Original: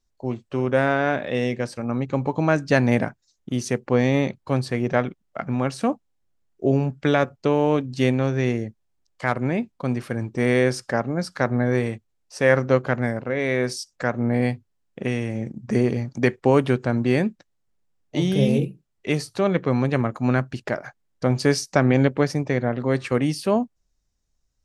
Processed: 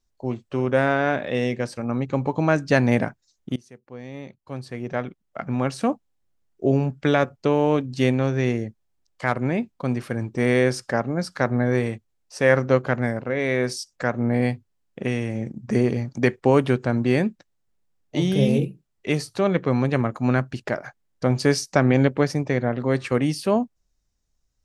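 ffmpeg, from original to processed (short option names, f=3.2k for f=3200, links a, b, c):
-filter_complex "[0:a]asplit=2[a][b];[a]atrim=end=3.56,asetpts=PTS-STARTPTS,afade=t=out:st=3.556:d=0.004:c=hsin:silence=0.0707946[c];[b]atrim=start=3.56,asetpts=PTS-STARTPTS,afade=t=in:d=2.06:c=qua:silence=0.0707946[d];[c][d]concat=n=2:v=0:a=1"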